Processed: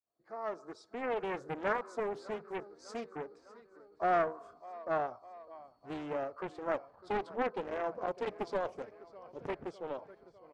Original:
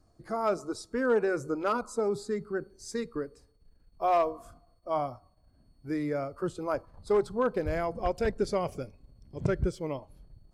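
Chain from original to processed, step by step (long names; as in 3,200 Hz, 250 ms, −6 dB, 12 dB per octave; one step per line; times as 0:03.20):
fade in at the beginning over 1.52 s
spectral tilt −4 dB per octave
in parallel at +2.5 dB: downward compressor, threshold −36 dBFS, peak gain reduction 25 dB
on the sum: soft clipping −10.5 dBFS, distortion −14 dB
band-pass filter 730–6,300 Hz
on a send: repeating echo 603 ms, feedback 60%, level −18.5 dB
on the sum: highs frequency-modulated by the lows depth 0.67 ms
level −3 dB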